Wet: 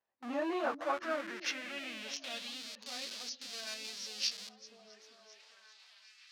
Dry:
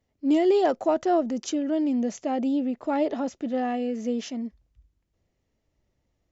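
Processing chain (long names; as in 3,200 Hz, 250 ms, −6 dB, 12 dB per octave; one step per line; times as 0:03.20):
phase-vocoder pitch shift without resampling −2 semitones
in parallel at −10.5 dB: comparator with hysteresis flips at −38 dBFS
on the sum: tilt shelving filter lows −7 dB, about 1,400 Hz
echo through a band-pass that steps 395 ms, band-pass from 200 Hz, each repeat 0.7 octaves, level −4 dB
band-pass filter sweep 950 Hz → 4,600 Hz, 0:00.45–0:02.76
reversed playback
upward compression, threshold −58 dBFS
reversed playback
level +5.5 dB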